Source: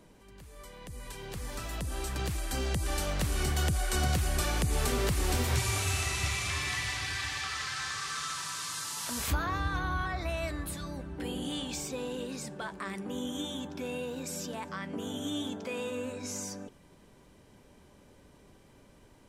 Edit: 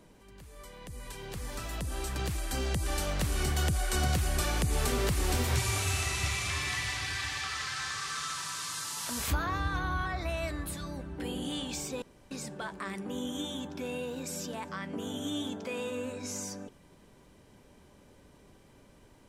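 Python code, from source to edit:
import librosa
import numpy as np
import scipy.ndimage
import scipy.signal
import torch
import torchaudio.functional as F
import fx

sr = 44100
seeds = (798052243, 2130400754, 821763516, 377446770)

y = fx.edit(x, sr, fx.room_tone_fill(start_s=12.02, length_s=0.29), tone=tone)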